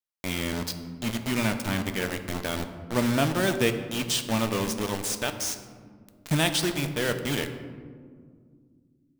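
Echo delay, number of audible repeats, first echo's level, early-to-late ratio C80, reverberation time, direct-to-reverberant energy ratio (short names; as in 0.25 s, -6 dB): none, none, none, 11.0 dB, 2.0 s, 7.0 dB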